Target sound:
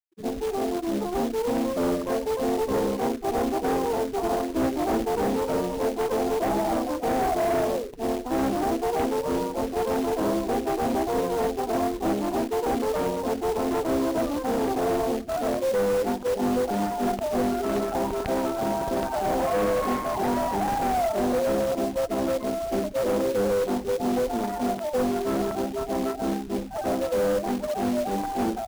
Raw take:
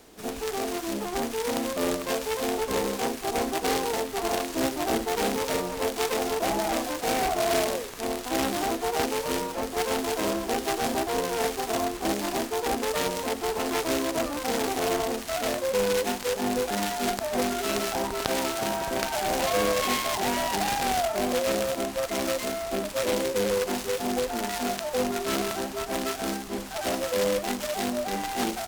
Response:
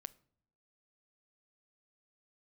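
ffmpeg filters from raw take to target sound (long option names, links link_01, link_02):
-af "adynamicsmooth=sensitivity=2:basefreq=950,afftfilt=real='re*gte(hypot(re,im),0.02)':imag='im*gte(hypot(re,im),0.02)':win_size=1024:overlap=0.75,lowpass=1200,equalizer=frequency=270:width_type=o:width=0.71:gain=2,aeval=exprs='0.299*sin(PI/2*2.82*val(0)/0.299)':channel_layout=same,acrusher=bits=3:mode=log:mix=0:aa=0.000001,volume=-8.5dB"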